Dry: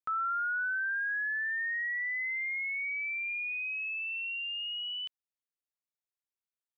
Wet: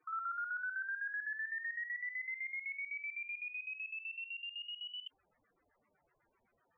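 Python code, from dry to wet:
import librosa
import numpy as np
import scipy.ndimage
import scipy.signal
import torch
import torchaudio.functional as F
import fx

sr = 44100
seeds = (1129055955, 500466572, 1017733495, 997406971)

y = fx.filter_lfo_lowpass(x, sr, shape='square', hz=7.9, low_hz=810.0, high_hz=2100.0, q=0.93)
y = fx.spec_topn(y, sr, count=16)
y = fx.hum_notches(y, sr, base_hz=60, count=3)
y = fx.env_flatten(y, sr, amount_pct=50)
y = y * 10.0 ** (-7.0 / 20.0)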